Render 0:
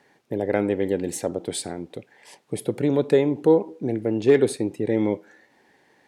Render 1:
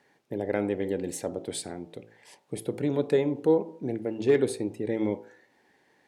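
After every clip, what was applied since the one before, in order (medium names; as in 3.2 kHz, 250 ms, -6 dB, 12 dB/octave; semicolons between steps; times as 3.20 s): de-hum 55.41 Hz, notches 23; trim -5 dB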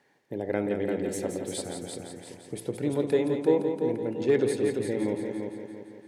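multi-head delay 171 ms, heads first and second, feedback 50%, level -7.5 dB; trim -1.5 dB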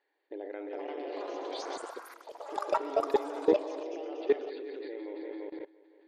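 brick-wall FIR band-pass 280–4800 Hz; level held to a coarse grid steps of 20 dB; ever faster or slower copies 504 ms, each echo +6 st, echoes 3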